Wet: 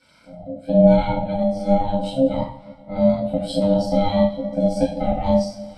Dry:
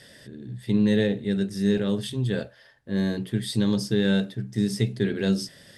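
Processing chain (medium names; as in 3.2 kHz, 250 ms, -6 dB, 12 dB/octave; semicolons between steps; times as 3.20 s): two-slope reverb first 0.61 s, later 2.8 s, from -19 dB, DRR -7.5 dB; ring modulator 400 Hz; in parallel at +1.5 dB: compression, threshold -30 dBFS, peak gain reduction 17 dB; on the sum: spectral contrast expander 1.5:1; trim +1 dB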